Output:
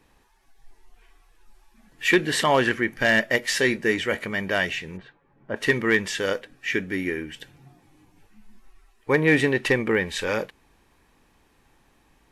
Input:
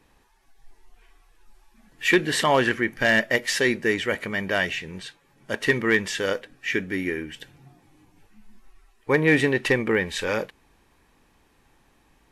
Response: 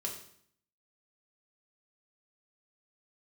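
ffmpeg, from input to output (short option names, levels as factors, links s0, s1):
-filter_complex "[0:a]asettb=1/sr,asplit=3[s0][s1][s2];[s0]atrim=end=3.474[s3];[s1]atrim=start=3.47:end=4.25,asetpts=PTS-STARTPTS,afade=t=in:d=0.004:c=qsin,afade=t=out:st=0.776:d=0.004:c=qsin,asplit=2[s4][s5];[s5]adelay=23,volume=0.237[s6];[s4][s6]amix=inputs=2:normalize=0,atrim=end_sample=34398[s7];[s2]atrim=start=4.246[s8];[s3][s7]acrossfade=d=0.004:c1=hsin:c2=qsin[s9];[s9][s8]acrossfade=d=0.004:c1=qsin:c2=hsin,asplit=3[s10][s11][s12];[s10]afade=t=out:st=4.96:d=0.02[s13];[s11]lowpass=1400,afade=t=in:st=4.96:d=0.02,afade=t=out:st=5.55:d=0.02[s14];[s12]afade=t=in:st=5.55:d=0.02[s15];[s13][s14][s15]amix=inputs=3:normalize=0"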